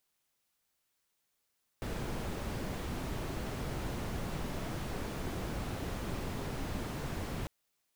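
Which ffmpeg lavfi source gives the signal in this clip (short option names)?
-f lavfi -i "anoisesrc=c=brown:a=0.0661:d=5.65:r=44100:seed=1"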